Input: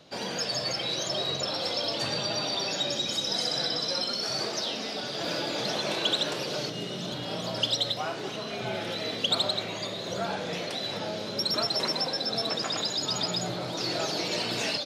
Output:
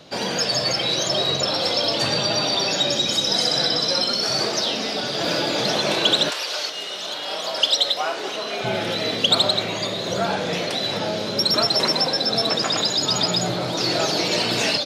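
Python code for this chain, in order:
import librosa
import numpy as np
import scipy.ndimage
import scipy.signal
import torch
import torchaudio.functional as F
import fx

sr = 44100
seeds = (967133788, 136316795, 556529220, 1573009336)

y = fx.highpass(x, sr, hz=fx.line((6.29, 1000.0), (8.63, 340.0)), slope=12, at=(6.29, 8.63), fade=0.02)
y = y * librosa.db_to_amplitude(8.5)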